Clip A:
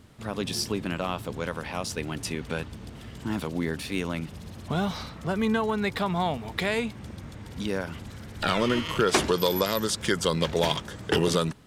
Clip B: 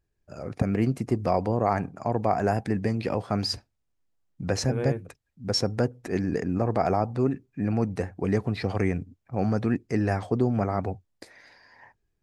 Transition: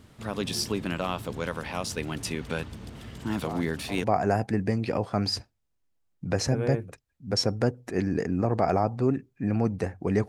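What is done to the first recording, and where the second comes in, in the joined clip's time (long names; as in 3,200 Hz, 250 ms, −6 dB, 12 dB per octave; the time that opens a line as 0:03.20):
clip A
0:03.42: mix in clip B from 0:01.59 0.62 s −13.5 dB
0:04.04: continue with clip B from 0:02.21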